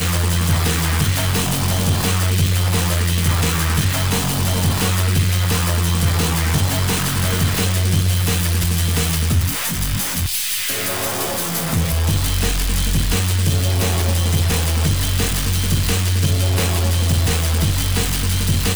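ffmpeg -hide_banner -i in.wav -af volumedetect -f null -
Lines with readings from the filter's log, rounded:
mean_volume: -17.3 dB
max_volume: -4.6 dB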